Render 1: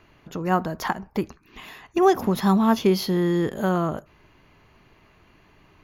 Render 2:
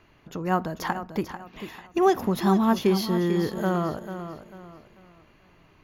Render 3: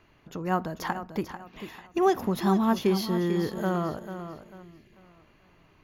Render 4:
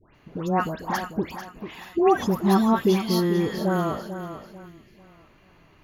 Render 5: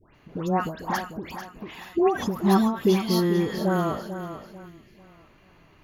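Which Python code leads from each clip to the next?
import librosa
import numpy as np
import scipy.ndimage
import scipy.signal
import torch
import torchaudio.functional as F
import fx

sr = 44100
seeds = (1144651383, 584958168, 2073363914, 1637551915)

y1 = fx.echo_feedback(x, sr, ms=443, feedback_pct=33, wet_db=-10.5)
y1 = F.gain(torch.from_numpy(y1), -2.5).numpy()
y2 = fx.spec_box(y1, sr, start_s=4.63, length_s=0.3, low_hz=420.0, high_hz=1600.0, gain_db=-12)
y2 = F.gain(torch.from_numpy(y2), -2.5).numpy()
y3 = fx.dispersion(y2, sr, late='highs', ms=150.0, hz=1600.0)
y3 = F.gain(torch.from_numpy(y3), 4.0).numpy()
y4 = fx.end_taper(y3, sr, db_per_s=140.0)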